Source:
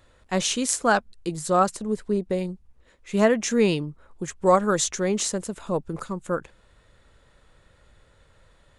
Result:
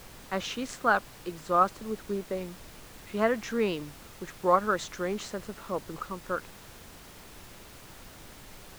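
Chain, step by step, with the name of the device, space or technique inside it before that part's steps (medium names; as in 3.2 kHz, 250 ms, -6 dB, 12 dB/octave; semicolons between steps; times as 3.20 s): horn gramophone (band-pass 200–3900 Hz; peaking EQ 1.3 kHz +7 dB; wow and flutter; pink noise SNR 16 dB); trim -7 dB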